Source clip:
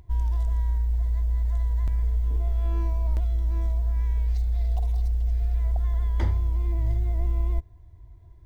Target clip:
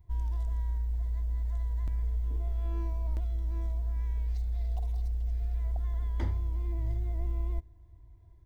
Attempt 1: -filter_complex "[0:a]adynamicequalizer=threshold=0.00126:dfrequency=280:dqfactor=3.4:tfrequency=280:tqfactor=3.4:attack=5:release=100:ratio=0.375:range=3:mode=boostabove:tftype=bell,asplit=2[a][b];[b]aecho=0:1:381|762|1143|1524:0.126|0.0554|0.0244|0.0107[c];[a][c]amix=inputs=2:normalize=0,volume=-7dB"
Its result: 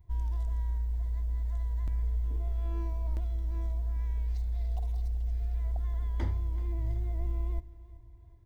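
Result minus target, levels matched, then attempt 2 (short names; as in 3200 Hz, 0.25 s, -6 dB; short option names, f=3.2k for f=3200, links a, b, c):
echo-to-direct +10.5 dB
-filter_complex "[0:a]adynamicequalizer=threshold=0.00126:dfrequency=280:dqfactor=3.4:tfrequency=280:tqfactor=3.4:attack=5:release=100:ratio=0.375:range=3:mode=boostabove:tftype=bell,asplit=2[a][b];[b]aecho=0:1:381|762:0.0376|0.0165[c];[a][c]amix=inputs=2:normalize=0,volume=-7dB"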